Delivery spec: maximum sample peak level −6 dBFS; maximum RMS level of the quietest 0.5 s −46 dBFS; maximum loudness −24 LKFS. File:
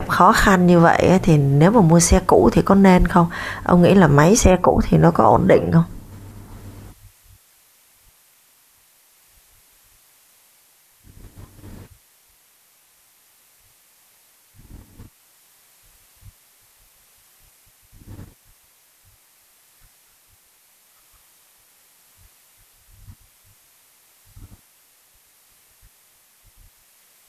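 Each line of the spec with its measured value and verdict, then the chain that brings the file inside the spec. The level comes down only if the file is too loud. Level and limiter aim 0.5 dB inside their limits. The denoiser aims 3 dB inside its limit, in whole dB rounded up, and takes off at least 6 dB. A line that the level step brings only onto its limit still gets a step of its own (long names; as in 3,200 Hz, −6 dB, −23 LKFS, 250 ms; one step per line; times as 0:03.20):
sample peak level −2.0 dBFS: out of spec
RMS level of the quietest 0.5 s −57 dBFS: in spec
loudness −14.5 LKFS: out of spec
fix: level −10 dB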